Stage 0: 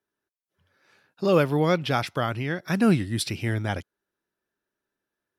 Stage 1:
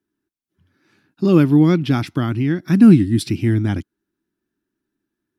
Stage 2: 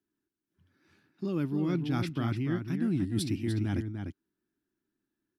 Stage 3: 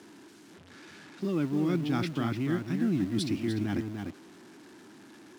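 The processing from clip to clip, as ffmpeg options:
-af "lowshelf=f=400:t=q:w=3:g=8.5"
-filter_complex "[0:a]areverse,acompressor=threshold=0.1:ratio=10,areverse,asplit=2[s0][s1];[s1]adelay=297.4,volume=0.501,highshelf=f=4000:g=-6.69[s2];[s0][s2]amix=inputs=2:normalize=0,volume=0.447"
-filter_complex "[0:a]aeval=exprs='val(0)+0.5*0.00631*sgn(val(0))':c=same,highpass=150,lowpass=7400,asplit=2[s0][s1];[s1]acrusher=bits=6:mix=0:aa=0.000001,volume=0.251[s2];[s0][s2]amix=inputs=2:normalize=0"

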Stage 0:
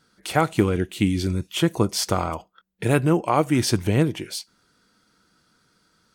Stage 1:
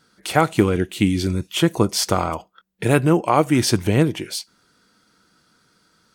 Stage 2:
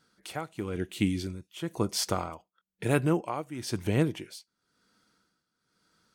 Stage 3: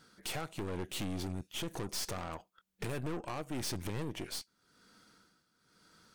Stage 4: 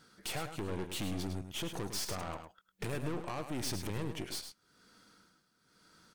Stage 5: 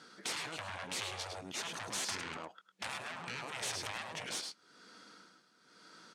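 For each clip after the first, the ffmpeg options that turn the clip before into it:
-af "lowshelf=f=78:g=-5.5,volume=1.5"
-af "tremolo=f=1:d=0.8,volume=0.376"
-af "acompressor=threshold=0.0158:ratio=8,aeval=exprs='(tanh(200*val(0)+0.8)-tanh(0.8))/200':c=same,volume=3.55"
-af "aecho=1:1:105:0.376"
-af "highpass=250,lowpass=7000,afftfilt=real='re*lt(hypot(re,im),0.0178)':imag='im*lt(hypot(re,im),0.0178)':win_size=1024:overlap=0.75,volume=2.24"

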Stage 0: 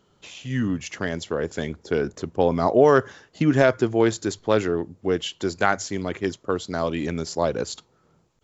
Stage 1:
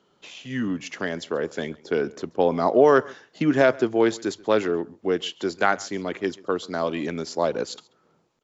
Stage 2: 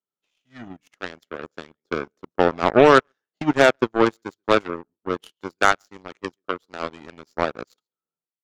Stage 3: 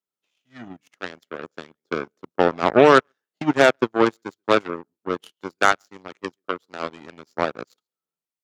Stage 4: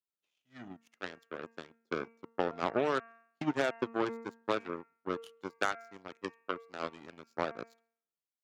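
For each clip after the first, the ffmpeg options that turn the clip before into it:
-filter_complex "[0:a]acrossover=split=170 6700:gain=0.158 1 0.224[s0][s1][s2];[s0][s1][s2]amix=inputs=3:normalize=0,aecho=1:1:135:0.0668"
-af "aeval=exprs='0.596*(cos(1*acos(clip(val(0)/0.596,-1,1)))-cos(1*PI/2))+0.00376*(cos(4*acos(clip(val(0)/0.596,-1,1)))-cos(4*PI/2))+0.0841*(cos(7*acos(clip(val(0)/0.596,-1,1)))-cos(7*PI/2))':c=same,equalizer=f=1300:t=o:w=0.25:g=5,volume=1.41"
-af "highpass=100"
-af "bandreject=f=229.3:t=h:w=4,bandreject=f=458.6:t=h:w=4,bandreject=f=687.9:t=h:w=4,bandreject=f=917.2:t=h:w=4,bandreject=f=1146.5:t=h:w=4,bandreject=f=1375.8:t=h:w=4,bandreject=f=1605.1:t=h:w=4,bandreject=f=1834.4:t=h:w=4,bandreject=f=2063.7:t=h:w=4,bandreject=f=2293:t=h:w=4,bandreject=f=2522.3:t=h:w=4,bandreject=f=2751.6:t=h:w=4,acompressor=threshold=0.126:ratio=6,volume=0.376"

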